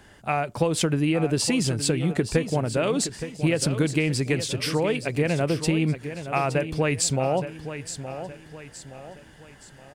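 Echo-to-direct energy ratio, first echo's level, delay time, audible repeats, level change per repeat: -10.0 dB, -11.0 dB, 0.869 s, 4, -8.0 dB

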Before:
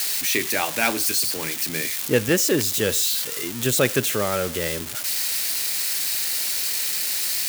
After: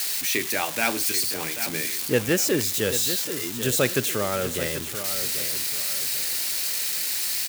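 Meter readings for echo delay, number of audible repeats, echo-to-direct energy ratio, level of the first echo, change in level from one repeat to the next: 0.787 s, 3, -10.0 dB, -10.5 dB, -9.5 dB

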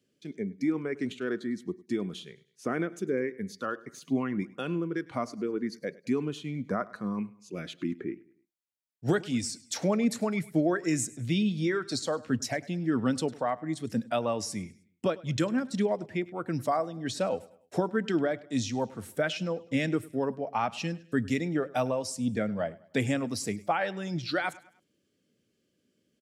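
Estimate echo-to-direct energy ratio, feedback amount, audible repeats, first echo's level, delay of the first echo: -20.0 dB, 41%, 2, -21.0 dB, 0.102 s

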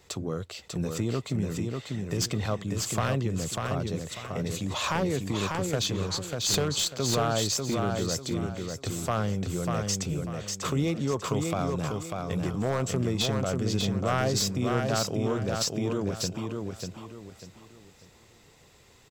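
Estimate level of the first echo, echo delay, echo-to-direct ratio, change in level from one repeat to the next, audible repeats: -4.0 dB, 0.594 s, -3.5 dB, -10.0 dB, 4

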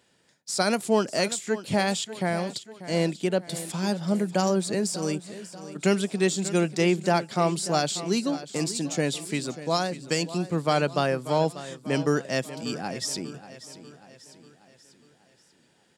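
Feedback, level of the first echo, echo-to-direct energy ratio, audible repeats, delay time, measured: 50%, -14.5 dB, -13.5 dB, 4, 0.59 s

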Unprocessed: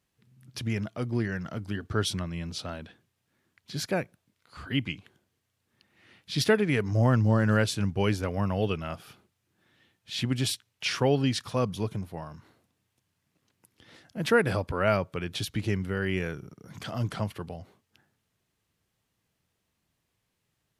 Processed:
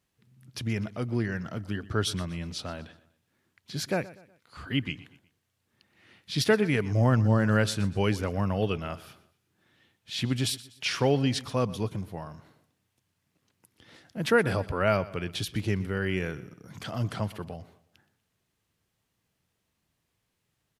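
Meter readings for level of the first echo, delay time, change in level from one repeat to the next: -18.5 dB, 0.122 s, -8.0 dB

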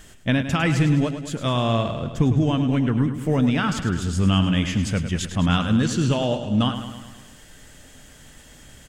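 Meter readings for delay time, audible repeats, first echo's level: 0.104 s, 6, -10.0 dB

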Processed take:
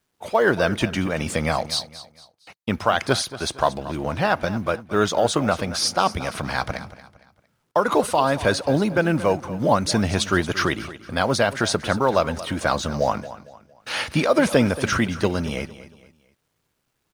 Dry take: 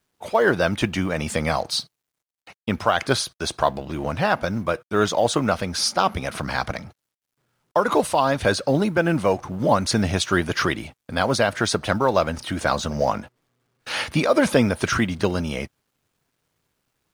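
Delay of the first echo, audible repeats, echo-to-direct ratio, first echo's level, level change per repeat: 0.229 s, 3, -15.0 dB, -15.5 dB, -9.0 dB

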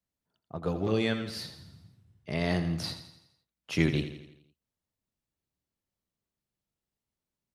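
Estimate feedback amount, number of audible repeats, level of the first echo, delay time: 52%, 5, -11.0 dB, 84 ms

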